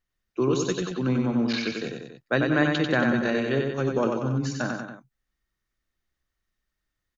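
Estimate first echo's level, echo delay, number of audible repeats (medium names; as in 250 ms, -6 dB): -4.0 dB, 93 ms, 3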